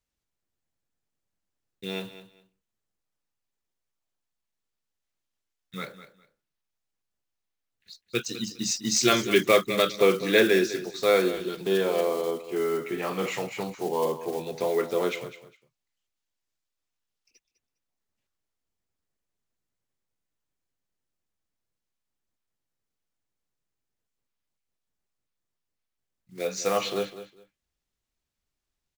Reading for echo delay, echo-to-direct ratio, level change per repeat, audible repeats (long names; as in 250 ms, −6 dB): 203 ms, −13.5 dB, −13.5 dB, 2